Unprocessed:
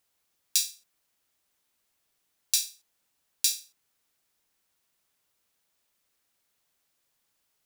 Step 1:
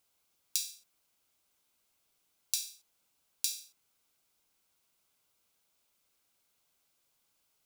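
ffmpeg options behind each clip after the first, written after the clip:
-af "bandreject=f=1.8k:w=6.3,acompressor=threshold=-28dB:ratio=12"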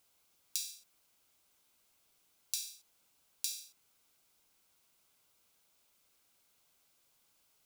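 -af "alimiter=limit=-13dB:level=0:latency=1:release=331,volume=3.5dB"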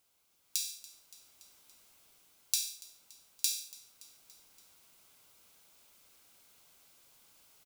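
-af "aecho=1:1:285|570|855|1140:0.0841|0.048|0.0273|0.0156,dynaudnorm=f=230:g=5:m=10.5dB,volume=-1.5dB"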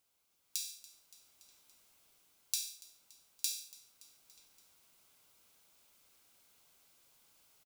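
-filter_complex "[0:a]asplit=2[a][b];[b]adelay=932.9,volume=-17dB,highshelf=f=4k:g=-21[c];[a][c]amix=inputs=2:normalize=0,volume=-4.5dB"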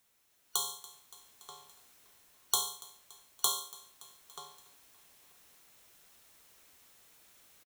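-filter_complex "[0:a]afftfilt=real='real(if(lt(b,272),68*(eq(floor(b/68),0)*2+eq(floor(b/68),1)*0+eq(floor(b/68),2)*3+eq(floor(b/68),3)*1)+mod(b,68),b),0)':imag='imag(if(lt(b,272),68*(eq(floor(b/68),0)*2+eq(floor(b/68),1)*0+eq(floor(b/68),2)*3+eq(floor(b/68),3)*1)+mod(b,68),b),0)':win_size=2048:overlap=0.75,asplit=2[a][b];[b]adelay=932.9,volume=-10dB,highshelf=f=4k:g=-21[c];[a][c]amix=inputs=2:normalize=0,volume=6dB"

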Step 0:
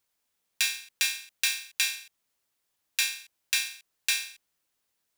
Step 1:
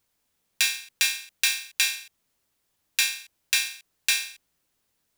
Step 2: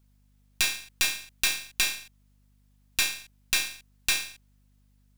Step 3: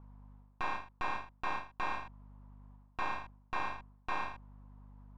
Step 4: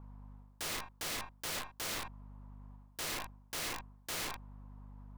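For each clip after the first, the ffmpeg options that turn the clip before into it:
-af "lowshelf=f=350:g=8.5,volume=3.5dB"
-af "aeval=exprs='if(lt(val(0),0),0.447*val(0),val(0))':c=same,aeval=exprs='val(0)+0.000794*(sin(2*PI*50*n/s)+sin(2*PI*2*50*n/s)/2+sin(2*PI*3*50*n/s)/3+sin(2*PI*4*50*n/s)/4+sin(2*PI*5*50*n/s)/5)':c=same"
-af "areverse,acompressor=threshold=-34dB:ratio=6,areverse,lowpass=f=990:t=q:w=5.5,volume=9dB"
-af "aeval=exprs='(mod(66.8*val(0)+1,2)-1)/66.8':c=same,volume=3dB"

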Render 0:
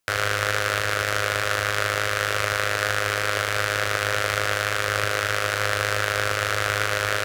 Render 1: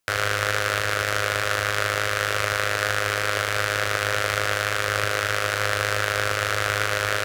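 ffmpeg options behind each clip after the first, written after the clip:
-af anull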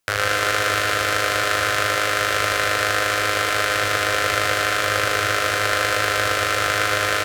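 -af "aecho=1:1:120|210|277.5|328.1|366.1:0.631|0.398|0.251|0.158|0.1,volume=2dB"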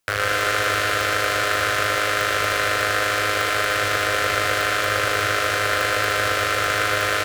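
-af "aeval=exprs='clip(val(0),-1,0.335)':c=same"

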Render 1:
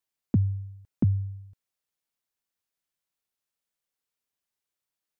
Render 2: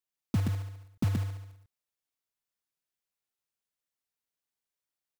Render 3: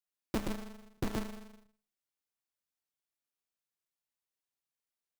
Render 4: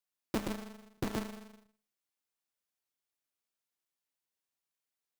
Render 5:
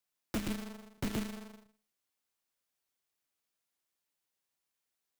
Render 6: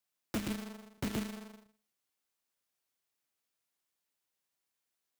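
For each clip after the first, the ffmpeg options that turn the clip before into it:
-af "aecho=1:1:125:0.596,acrusher=bits=3:mode=log:mix=0:aa=0.000001,volume=-5.5dB"
-af "bandreject=f=50:t=h:w=6,bandreject=f=100:t=h:w=6,bandreject=f=150:t=h:w=6,bandreject=f=200:t=h:w=6,aeval=exprs='val(0)*sgn(sin(2*PI*110*n/s))':c=same,volume=-4dB"
-af "lowshelf=f=70:g=-9.5,volume=1dB"
-filter_complex "[0:a]acrossover=split=330|1500|6700[a][b][c][d];[b]acompressor=threshold=-49dB:ratio=6[e];[a][e][c][d]amix=inputs=4:normalize=0,aeval=exprs='0.0299*(abs(mod(val(0)/0.0299+3,4)-2)-1)':c=same,volume=3.5dB"
-af "highpass=f=48:p=1"

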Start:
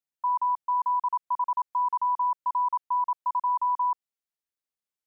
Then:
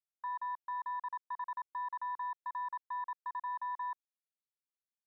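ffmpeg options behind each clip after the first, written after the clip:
-af "afwtdn=0.0224,highpass=970,alimiter=level_in=9dB:limit=-24dB:level=0:latency=1:release=117,volume=-9dB"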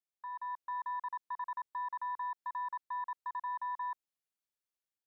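-af "dynaudnorm=f=300:g=3:m=5.5dB,volume=-5dB"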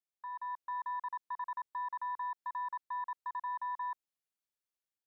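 -af anull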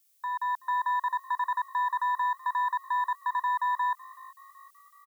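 -filter_complex "[0:a]asplit=5[a][b][c][d][e];[b]adelay=377,afreqshift=52,volume=-21dB[f];[c]adelay=754,afreqshift=104,volume=-26.2dB[g];[d]adelay=1131,afreqshift=156,volume=-31.4dB[h];[e]adelay=1508,afreqshift=208,volume=-36.6dB[i];[a][f][g][h][i]amix=inputs=5:normalize=0,crystalizer=i=9.5:c=0,acontrast=32"

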